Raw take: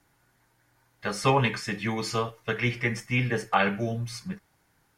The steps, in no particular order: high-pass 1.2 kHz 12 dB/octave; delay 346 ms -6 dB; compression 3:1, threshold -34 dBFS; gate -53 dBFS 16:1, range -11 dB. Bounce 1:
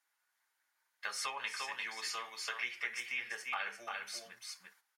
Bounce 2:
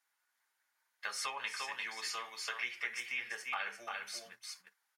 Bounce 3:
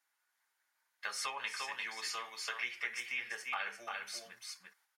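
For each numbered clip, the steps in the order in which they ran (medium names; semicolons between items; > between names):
delay > compression > gate > high-pass; delay > compression > high-pass > gate; gate > delay > compression > high-pass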